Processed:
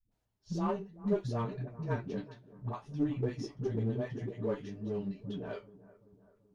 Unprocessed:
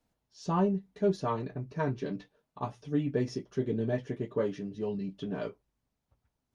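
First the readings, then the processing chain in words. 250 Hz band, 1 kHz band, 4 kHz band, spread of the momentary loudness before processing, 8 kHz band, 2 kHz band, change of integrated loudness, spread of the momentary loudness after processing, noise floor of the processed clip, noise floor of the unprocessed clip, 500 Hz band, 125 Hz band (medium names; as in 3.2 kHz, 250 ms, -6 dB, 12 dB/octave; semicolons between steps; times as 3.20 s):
-3.5 dB, -5.5 dB, -4.0 dB, 10 LU, no reading, -4.0 dB, -3.5 dB, 9 LU, -79 dBFS, -84 dBFS, -4.5 dB, -1.0 dB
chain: bass shelf 87 Hz +11 dB; phase dispersion highs, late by 116 ms, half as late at 310 Hz; flange 1.5 Hz, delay 8.6 ms, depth 1.5 ms, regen +47%; in parallel at -4 dB: one-sided clip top -36.5 dBFS; on the sum: flange 0.62 Hz, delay 5.9 ms, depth 7.3 ms, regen -66%; on a send: bucket-brigade echo 384 ms, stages 4096, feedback 51%, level -19 dB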